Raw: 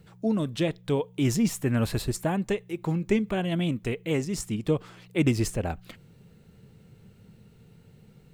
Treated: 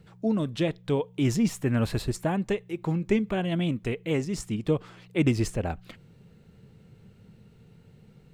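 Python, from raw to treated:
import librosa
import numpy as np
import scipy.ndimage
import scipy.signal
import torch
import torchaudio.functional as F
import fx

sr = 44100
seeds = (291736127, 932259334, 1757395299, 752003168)

y = fx.high_shelf(x, sr, hz=8300.0, db=-9.0)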